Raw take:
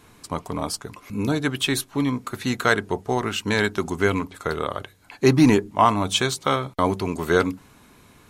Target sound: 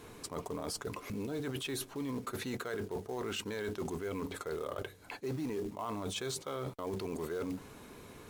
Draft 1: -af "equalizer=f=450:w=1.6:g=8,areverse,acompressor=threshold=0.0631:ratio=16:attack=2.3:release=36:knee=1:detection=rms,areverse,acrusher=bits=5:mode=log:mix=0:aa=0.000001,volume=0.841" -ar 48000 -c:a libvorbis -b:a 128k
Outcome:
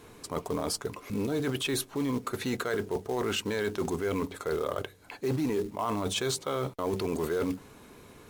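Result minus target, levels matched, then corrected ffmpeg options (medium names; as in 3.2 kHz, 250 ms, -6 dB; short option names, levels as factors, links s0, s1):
compression: peak gain reduction -8 dB
-af "equalizer=f=450:w=1.6:g=8,areverse,acompressor=threshold=0.0237:ratio=16:attack=2.3:release=36:knee=1:detection=rms,areverse,acrusher=bits=5:mode=log:mix=0:aa=0.000001,volume=0.841" -ar 48000 -c:a libvorbis -b:a 128k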